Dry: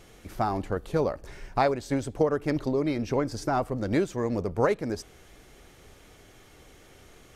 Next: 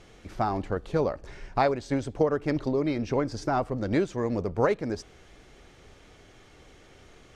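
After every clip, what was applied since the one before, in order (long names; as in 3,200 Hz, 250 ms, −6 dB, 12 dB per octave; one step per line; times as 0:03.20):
low-pass filter 6,400 Hz 12 dB per octave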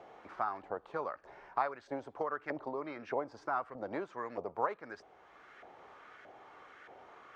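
auto-filter band-pass saw up 1.6 Hz 710–1,600 Hz
multiband upward and downward compressor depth 40%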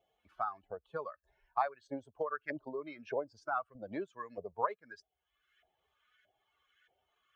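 spectral dynamics exaggerated over time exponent 2
level +3.5 dB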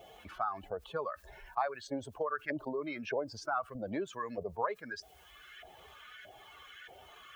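envelope flattener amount 50%
level −2 dB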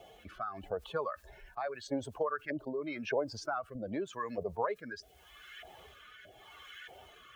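rotating-speaker cabinet horn 0.85 Hz
level +3 dB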